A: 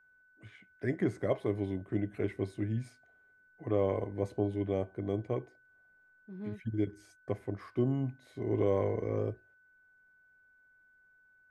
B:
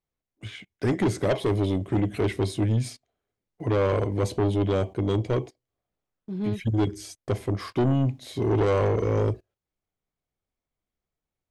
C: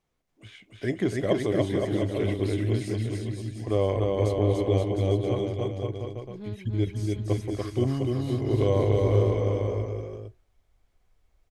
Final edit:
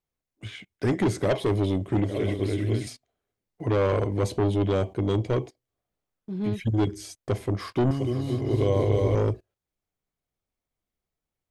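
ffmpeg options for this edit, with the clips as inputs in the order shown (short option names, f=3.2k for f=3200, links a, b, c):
-filter_complex "[2:a]asplit=2[a][b];[1:a]asplit=3[c][d][e];[c]atrim=end=2.042[f];[a]atrim=start=2.038:end=2.872[g];[d]atrim=start=2.868:end=7.912[h];[b]atrim=start=7.908:end=9.152[i];[e]atrim=start=9.148[j];[f][g]acrossfade=d=0.004:c1=hsin:c2=hsin[k];[k][h]acrossfade=d=0.004:c1=hsin:c2=hsin[l];[l][i]acrossfade=d=0.004:c1=hsin:c2=hsin[m];[m][j]acrossfade=d=0.004:c1=hsin:c2=hsin"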